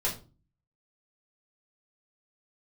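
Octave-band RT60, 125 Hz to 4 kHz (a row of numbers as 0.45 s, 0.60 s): 0.65 s, 0.55 s, 0.40 s, 0.30 s, 0.25 s, 0.25 s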